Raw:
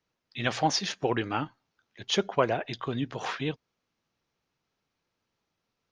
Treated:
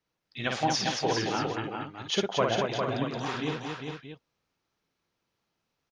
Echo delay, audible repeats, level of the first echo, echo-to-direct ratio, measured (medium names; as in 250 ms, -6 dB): 54 ms, 5, -4.0 dB, 0.5 dB